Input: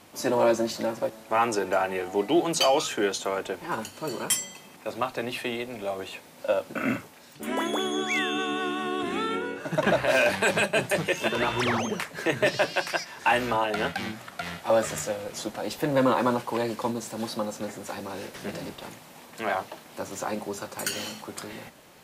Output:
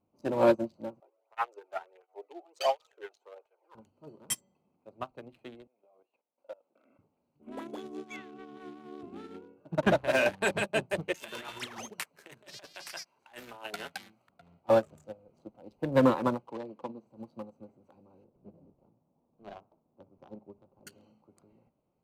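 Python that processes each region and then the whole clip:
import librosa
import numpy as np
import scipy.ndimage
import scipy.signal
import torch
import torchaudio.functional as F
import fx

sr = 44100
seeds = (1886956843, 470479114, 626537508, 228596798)

y = fx.chain(x, sr, fx.steep_highpass(hz=430.0, slope=36),
    fx.peak_eq(hz=1800.0, db=5.5, octaves=0.55),
    fx.flanger_cancel(hz=1.4, depth_ms=2.2), at=(1.0, 3.75))
y = fx.chain(y, sr, fx.highpass(hz=530.0, slope=12),
    fx.level_steps(step_db=13), at=(5.67, 6.99))
y = fx.chain(y, sr, fx.lowpass(hz=2600.0, slope=12),
    fx.hum_notches(base_hz=60, count=7), at=(8.16, 8.57))
y = fx.chain(y, sr, fx.over_compress(threshold_db=-27.0, ratio=-1.0),
    fx.tilt_eq(slope=3.5), at=(11.14, 14.29))
y = fx.chain(y, sr, fx.bandpass_edges(low_hz=190.0, high_hz=4900.0),
    fx.band_squash(depth_pct=70), at=(16.48, 17.07))
y = fx.chain(y, sr, fx.median_filter(points=25),
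    fx.brickwall_lowpass(high_hz=6500.0),
    fx.echo_banded(ms=62, feedback_pct=53, hz=1400.0, wet_db=-15), at=(18.24, 20.87))
y = fx.wiener(y, sr, points=25)
y = fx.low_shelf(y, sr, hz=260.0, db=6.0)
y = fx.upward_expand(y, sr, threshold_db=-34.0, expansion=2.5)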